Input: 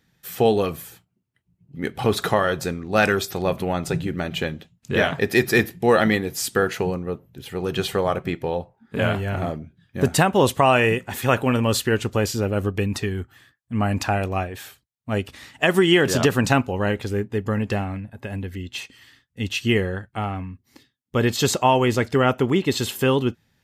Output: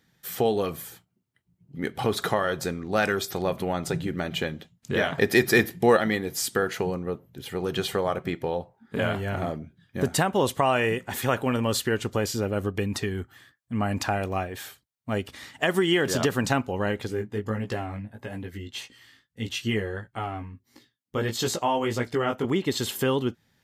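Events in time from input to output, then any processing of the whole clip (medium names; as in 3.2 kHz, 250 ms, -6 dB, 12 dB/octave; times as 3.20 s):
5.18–5.97 s: gain +6 dB
13.97–16.43 s: short-mantissa float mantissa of 6-bit
17.07–22.45 s: chorus 1.6 Hz, delay 16.5 ms, depth 3.1 ms
whole clip: bass shelf 100 Hz -6.5 dB; band-stop 2.6 kHz, Q 15; compression 1.5:1, threshold -28 dBFS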